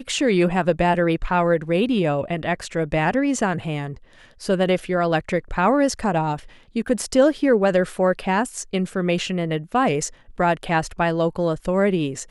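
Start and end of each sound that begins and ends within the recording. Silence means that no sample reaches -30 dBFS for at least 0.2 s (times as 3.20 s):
4.42–6.39 s
6.76–10.09 s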